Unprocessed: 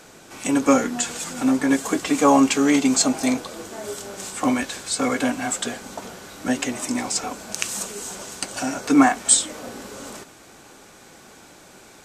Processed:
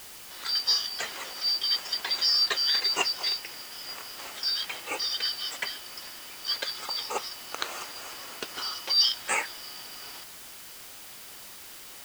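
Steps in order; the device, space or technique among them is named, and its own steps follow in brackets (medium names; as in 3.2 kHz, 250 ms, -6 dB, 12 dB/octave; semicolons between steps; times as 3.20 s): split-band scrambled radio (four frequency bands reordered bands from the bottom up 4321; band-pass 360–3000 Hz; white noise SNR 14 dB)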